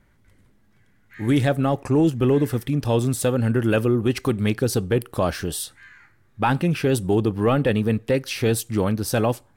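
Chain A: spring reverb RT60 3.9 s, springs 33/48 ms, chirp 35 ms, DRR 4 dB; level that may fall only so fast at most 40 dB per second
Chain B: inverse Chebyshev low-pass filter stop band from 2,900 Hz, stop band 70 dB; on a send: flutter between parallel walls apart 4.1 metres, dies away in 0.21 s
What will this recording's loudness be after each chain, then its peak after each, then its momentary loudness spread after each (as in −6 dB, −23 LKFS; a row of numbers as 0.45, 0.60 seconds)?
−19.5, −21.5 LKFS; −6.5, −7.5 dBFS; 7, 7 LU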